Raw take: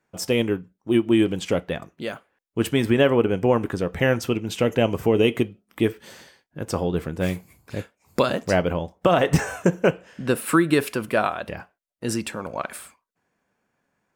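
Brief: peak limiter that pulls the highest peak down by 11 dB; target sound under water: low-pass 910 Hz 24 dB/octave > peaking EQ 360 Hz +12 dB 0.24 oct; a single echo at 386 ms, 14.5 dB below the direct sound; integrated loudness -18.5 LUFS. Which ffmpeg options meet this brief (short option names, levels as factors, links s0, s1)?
-af "alimiter=limit=0.168:level=0:latency=1,lowpass=f=910:w=0.5412,lowpass=f=910:w=1.3066,equalizer=f=360:t=o:w=0.24:g=12,aecho=1:1:386:0.188,volume=2"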